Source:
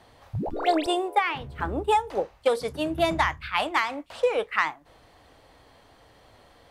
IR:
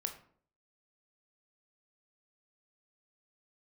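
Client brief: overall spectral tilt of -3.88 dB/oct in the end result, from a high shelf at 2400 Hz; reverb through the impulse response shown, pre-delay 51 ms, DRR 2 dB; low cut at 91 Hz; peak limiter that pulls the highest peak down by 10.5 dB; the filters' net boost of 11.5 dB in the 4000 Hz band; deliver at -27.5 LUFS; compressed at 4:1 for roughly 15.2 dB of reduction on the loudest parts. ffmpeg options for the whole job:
-filter_complex "[0:a]highpass=91,highshelf=f=2.4k:g=7.5,equalizer=f=4k:t=o:g=8.5,acompressor=threshold=-34dB:ratio=4,alimiter=level_in=3dB:limit=-24dB:level=0:latency=1,volume=-3dB,asplit=2[a][b];[1:a]atrim=start_sample=2205,adelay=51[c];[b][c]afir=irnorm=-1:irlink=0,volume=-1.5dB[d];[a][d]amix=inputs=2:normalize=0,volume=9.5dB"

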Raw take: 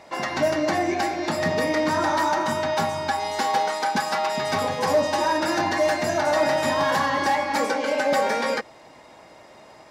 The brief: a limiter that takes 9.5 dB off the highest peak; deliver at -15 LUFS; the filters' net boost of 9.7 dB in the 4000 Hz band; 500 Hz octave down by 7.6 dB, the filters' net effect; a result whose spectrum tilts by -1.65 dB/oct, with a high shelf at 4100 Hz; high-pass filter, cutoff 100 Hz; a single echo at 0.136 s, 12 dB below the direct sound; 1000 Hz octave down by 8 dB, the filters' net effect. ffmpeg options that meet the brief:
-af "highpass=100,equalizer=f=500:t=o:g=-7,equalizer=f=1k:t=o:g=-8.5,equalizer=f=4k:t=o:g=7.5,highshelf=f=4.1k:g=8,alimiter=limit=-19.5dB:level=0:latency=1,aecho=1:1:136:0.251,volume=11.5dB"

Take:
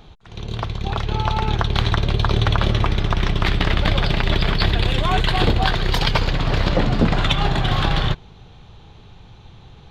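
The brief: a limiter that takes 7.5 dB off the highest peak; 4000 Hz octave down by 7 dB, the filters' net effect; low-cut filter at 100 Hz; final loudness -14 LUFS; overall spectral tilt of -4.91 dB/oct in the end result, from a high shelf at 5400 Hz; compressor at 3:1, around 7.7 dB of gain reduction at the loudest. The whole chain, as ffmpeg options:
-af "highpass=100,equalizer=f=4k:t=o:g=-6,highshelf=f=5.4k:g=-8.5,acompressor=threshold=-25dB:ratio=3,volume=15.5dB,alimiter=limit=-2.5dB:level=0:latency=1"

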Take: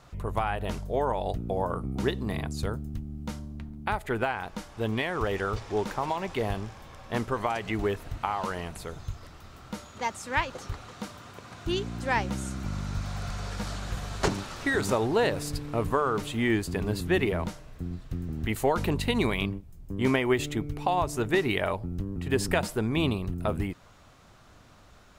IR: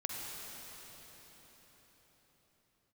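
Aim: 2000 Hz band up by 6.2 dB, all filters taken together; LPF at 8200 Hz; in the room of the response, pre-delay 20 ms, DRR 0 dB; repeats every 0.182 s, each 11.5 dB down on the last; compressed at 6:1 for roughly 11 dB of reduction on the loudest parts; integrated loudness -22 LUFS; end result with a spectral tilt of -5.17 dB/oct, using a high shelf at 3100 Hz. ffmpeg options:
-filter_complex "[0:a]lowpass=8.2k,equalizer=f=2k:t=o:g=6,highshelf=f=3.1k:g=4,acompressor=threshold=-30dB:ratio=6,aecho=1:1:182|364|546:0.266|0.0718|0.0194,asplit=2[a][b];[1:a]atrim=start_sample=2205,adelay=20[c];[b][c]afir=irnorm=-1:irlink=0,volume=-2.5dB[d];[a][d]amix=inputs=2:normalize=0,volume=10dB"

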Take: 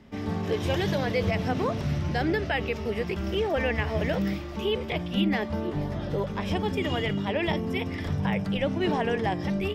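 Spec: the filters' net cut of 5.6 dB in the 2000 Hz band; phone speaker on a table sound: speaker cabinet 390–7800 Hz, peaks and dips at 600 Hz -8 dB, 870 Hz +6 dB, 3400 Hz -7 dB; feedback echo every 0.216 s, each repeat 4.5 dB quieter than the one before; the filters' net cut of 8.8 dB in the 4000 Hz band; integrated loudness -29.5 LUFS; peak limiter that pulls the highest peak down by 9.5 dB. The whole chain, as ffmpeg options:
-af "equalizer=f=2k:t=o:g=-5,equalizer=f=4k:t=o:g=-5.5,alimiter=level_in=0.5dB:limit=-24dB:level=0:latency=1,volume=-0.5dB,highpass=f=390:w=0.5412,highpass=f=390:w=1.3066,equalizer=f=600:t=q:w=4:g=-8,equalizer=f=870:t=q:w=4:g=6,equalizer=f=3.4k:t=q:w=4:g=-7,lowpass=f=7.8k:w=0.5412,lowpass=f=7.8k:w=1.3066,aecho=1:1:216|432|648|864|1080|1296|1512|1728|1944:0.596|0.357|0.214|0.129|0.0772|0.0463|0.0278|0.0167|0.01,volume=7dB"

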